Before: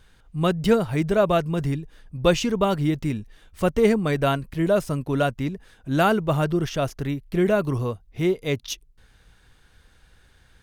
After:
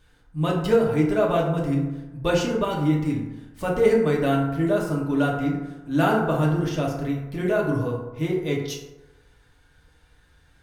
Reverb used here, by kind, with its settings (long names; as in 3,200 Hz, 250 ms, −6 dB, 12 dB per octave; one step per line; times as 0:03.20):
feedback delay network reverb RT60 1.1 s, low-frequency decay 0.85×, high-frequency decay 0.4×, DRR −3 dB
level −6 dB